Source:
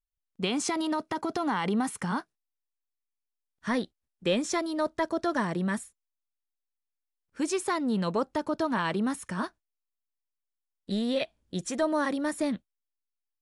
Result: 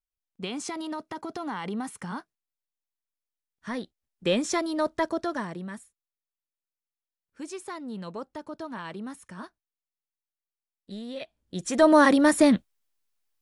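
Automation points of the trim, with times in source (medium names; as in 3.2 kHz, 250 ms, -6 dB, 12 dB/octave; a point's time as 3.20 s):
3.75 s -5 dB
4.31 s +2 dB
5.06 s +2 dB
5.70 s -9 dB
11.15 s -9 dB
11.63 s +0.5 dB
11.88 s +10.5 dB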